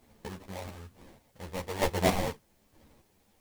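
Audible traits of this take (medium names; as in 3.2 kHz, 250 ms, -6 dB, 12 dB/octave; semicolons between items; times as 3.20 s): aliases and images of a low sample rate 1.4 kHz, jitter 20%; chopped level 1.1 Hz, depth 60%, duty 30%; a quantiser's noise floor 12-bit, dither triangular; a shimmering, thickened sound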